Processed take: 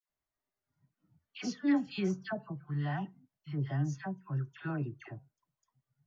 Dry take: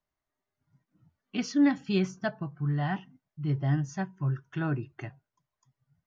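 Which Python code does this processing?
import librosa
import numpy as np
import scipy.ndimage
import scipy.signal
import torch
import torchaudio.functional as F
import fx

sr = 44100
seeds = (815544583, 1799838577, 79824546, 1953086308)

y = fx.dispersion(x, sr, late='lows', ms=93.0, hz=1200.0)
y = F.gain(torch.from_numpy(y), -5.5).numpy()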